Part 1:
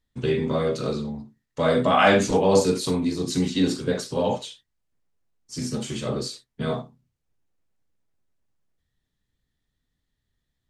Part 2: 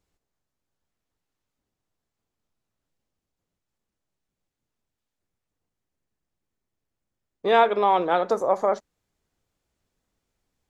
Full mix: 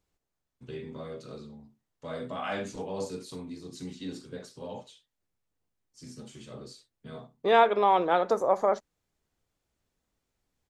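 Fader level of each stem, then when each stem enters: −16.5, −2.5 decibels; 0.45, 0.00 seconds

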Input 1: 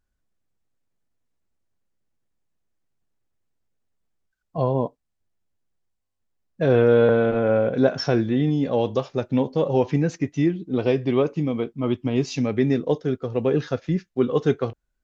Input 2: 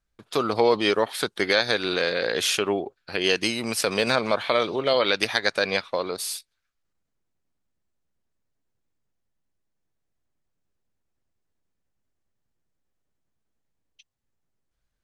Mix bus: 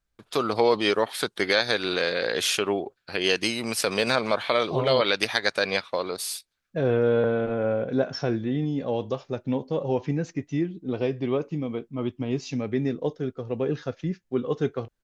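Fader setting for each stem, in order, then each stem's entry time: −5.5, −1.0 decibels; 0.15, 0.00 seconds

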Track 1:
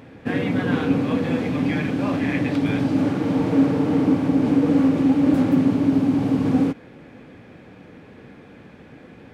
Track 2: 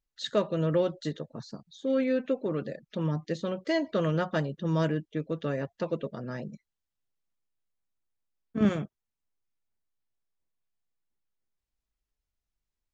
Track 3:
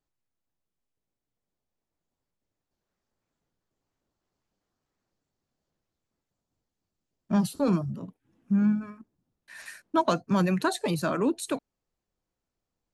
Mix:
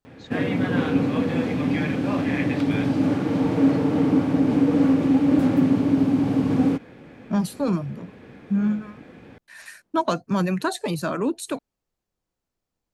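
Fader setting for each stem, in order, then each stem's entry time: −1.0, −12.5, +1.5 decibels; 0.05, 0.00, 0.00 seconds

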